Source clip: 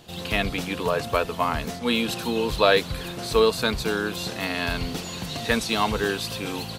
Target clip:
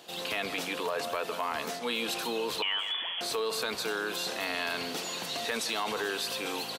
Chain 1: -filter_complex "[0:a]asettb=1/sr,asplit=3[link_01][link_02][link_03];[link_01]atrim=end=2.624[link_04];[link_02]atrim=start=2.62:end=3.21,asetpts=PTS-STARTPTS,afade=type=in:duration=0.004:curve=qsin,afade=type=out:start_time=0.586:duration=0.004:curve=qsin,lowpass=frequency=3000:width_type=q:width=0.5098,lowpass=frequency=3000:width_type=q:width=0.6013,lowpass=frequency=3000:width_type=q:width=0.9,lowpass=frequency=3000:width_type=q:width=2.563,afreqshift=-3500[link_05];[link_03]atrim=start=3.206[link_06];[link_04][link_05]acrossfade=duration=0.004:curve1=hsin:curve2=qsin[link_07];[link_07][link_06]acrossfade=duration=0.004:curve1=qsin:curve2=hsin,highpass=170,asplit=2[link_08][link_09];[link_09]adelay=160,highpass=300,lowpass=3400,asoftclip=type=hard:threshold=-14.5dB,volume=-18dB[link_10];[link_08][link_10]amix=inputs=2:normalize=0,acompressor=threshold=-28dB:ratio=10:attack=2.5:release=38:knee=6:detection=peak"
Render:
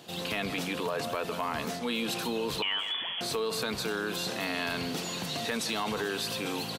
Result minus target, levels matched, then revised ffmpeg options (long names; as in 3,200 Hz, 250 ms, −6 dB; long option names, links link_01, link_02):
125 Hz band +10.0 dB
-filter_complex "[0:a]asettb=1/sr,asplit=3[link_01][link_02][link_03];[link_01]atrim=end=2.624[link_04];[link_02]atrim=start=2.62:end=3.21,asetpts=PTS-STARTPTS,afade=type=in:duration=0.004:curve=qsin,afade=type=out:start_time=0.586:duration=0.004:curve=qsin,lowpass=frequency=3000:width_type=q:width=0.5098,lowpass=frequency=3000:width_type=q:width=0.6013,lowpass=frequency=3000:width_type=q:width=0.9,lowpass=frequency=3000:width_type=q:width=2.563,afreqshift=-3500[link_05];[link_03]atrim=start=3.206[link_06];[link_04][link_05]acrossfade=duration=0.004:curve1=hsin:curve2=qsin[link_07];[link_07][link_06]acrossfade=duration=0.004:curve1=qsin:curve2=hsin,highpass=380,asplit=2[link_08][link_09];[link_09]adelay=160,highpass=300,lowpass=3400,asoftclip=type=hard:threshold=-14.5dB,volume=-18dB[link_10];[link_08][link_10]amix=inputs=2:normalize=0,acompressor=threshold=-28dB:ratio=10:attack=2.5:release=38:knee=6:detection=peak"